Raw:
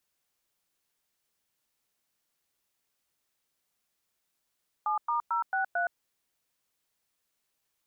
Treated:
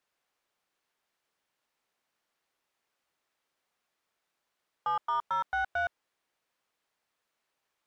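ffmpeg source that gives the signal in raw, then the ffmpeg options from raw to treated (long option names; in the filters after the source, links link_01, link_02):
-f lavfi -i "aevalsrc='0.0376*clip(min(mod(t,0.223),0.118-mod(t,0.223))/0.002,0,1)*(eq(floor(t/0.223),0)*(sin(2*PI*852*mod(t,0.223))+sin(2*PI*1209*mod(t,0.223)))+eq(floor(t/0.223),1)*(sin(2*PI*941*mod(t,0.223))+sin(2*PI*1209*mod(t,0.223)))+eq(floor(t/0.223),2)*(sin(2*PI*941*mod(t,0.223))+sin(2*PI*1336*mod(t,0.223)))+eq(floor(t/0.223),3)*(sin(2*PI*770*mod(t,0.223))+sin(2*PI*1477*mod(t,0.223)))+eq(floor(t/0.223),4)*(sin(2*PI*697*mod(t,0.223))+sin(2*PI*1477*mod(t,0.223))))':duration=1.115:sample_rate=44100"
-filter_complex "[0:a]asplit=2[link_01][link_02];[link_02]highpass=frequency=720:poles=1,volume=13dB,asoftclip=type=tanh:threshold=-22dB[link_03];[link_01][link_03]amix=inputs=2:normalize=0,lowpass=frequency=1300:poles=1,volume=-6dB"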